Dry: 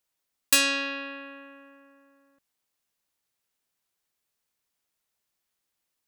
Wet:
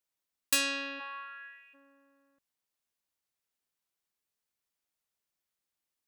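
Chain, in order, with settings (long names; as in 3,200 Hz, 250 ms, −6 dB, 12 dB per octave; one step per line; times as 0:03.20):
0:00.99–0:01.73: high-pass with resonance 830 Hz → 2,500 Hz, resonance Q 4.9
level −7 dB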